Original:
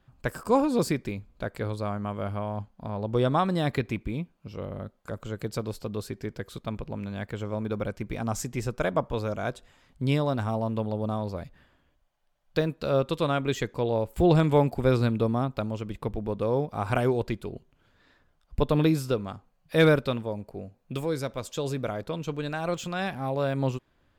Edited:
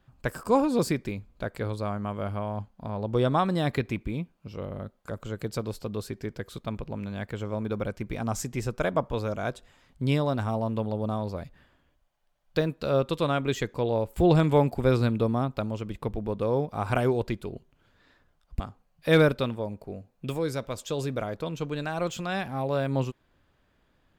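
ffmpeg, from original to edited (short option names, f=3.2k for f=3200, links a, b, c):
-filter_complex "[0:a]asplit=2[a][b];[a]atrim=end=18.602[c];[b]atrim=start=19.268[d];[c][d]acrossfade=d=0.004:c1=hsin:c2=hsin"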